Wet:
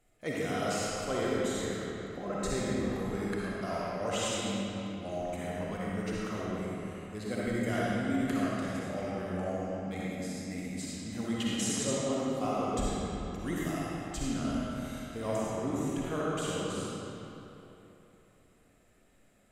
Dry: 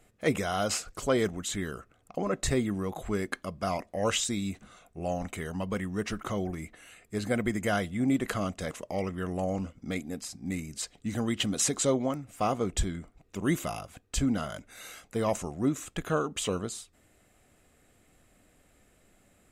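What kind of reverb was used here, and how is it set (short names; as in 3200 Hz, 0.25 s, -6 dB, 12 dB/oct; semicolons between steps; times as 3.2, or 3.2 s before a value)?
digital reverb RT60 3.3 s, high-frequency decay 0.7×, pre-delay 20 ms, DRR -7 dB; gain -10 dB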